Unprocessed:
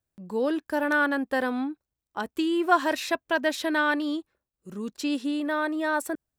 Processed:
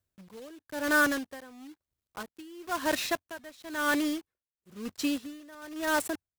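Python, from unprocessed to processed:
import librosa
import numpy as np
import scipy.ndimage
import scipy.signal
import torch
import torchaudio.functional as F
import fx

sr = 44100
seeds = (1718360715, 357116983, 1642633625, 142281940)

y = fx.block_float(x, sr, bits=3)
y = fx.peak_eq(y, sr, hz=92.0, db=6.5, octaves=0.44)
y = fx.notch(y, sr, hz=850.0, q=12.0)
y = fx.wow_flutter(y, sr, seeds[0], rate_hz=2.1, depth_cents=25.0)
y = y * 10.0 ** (-22 * (0.5 - 0.5 * np.cos(2.0 * np.pi * 1.0 * np.arange(len(y)) / sr)) / 20.0)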